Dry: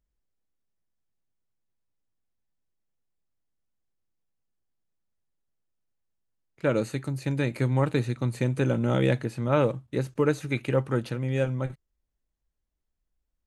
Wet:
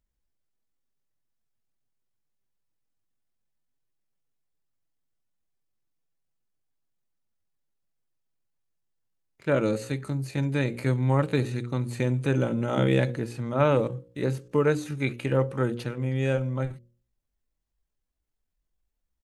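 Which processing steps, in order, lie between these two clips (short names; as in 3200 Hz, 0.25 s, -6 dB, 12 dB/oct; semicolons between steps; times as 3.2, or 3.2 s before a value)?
notches 60/120/180/240/300/360/420/480/540 Hz; tempo 0.7×; gain +1 dB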